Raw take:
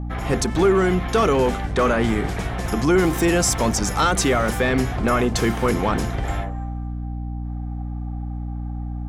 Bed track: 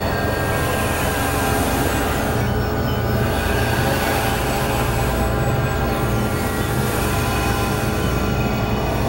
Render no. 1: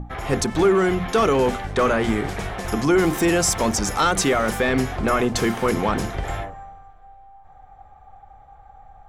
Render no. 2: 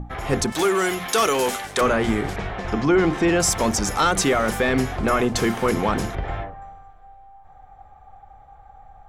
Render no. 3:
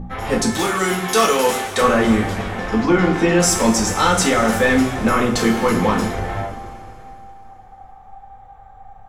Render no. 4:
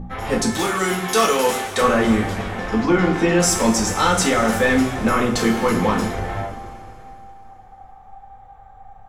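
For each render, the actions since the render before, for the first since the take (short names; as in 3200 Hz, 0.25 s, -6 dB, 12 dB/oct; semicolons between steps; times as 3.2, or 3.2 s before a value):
notches 60/120/180/240/300 Hz
0.52–1.81 RIAA curve recording; 2.36–3.4 LPF 3900 Hz; 6.15–6.62 air absorption 230 m
two-slope reverb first 0.34 s, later 3.3 s, from -18 dB, DRR -1.5 dB
gain -1.5 dB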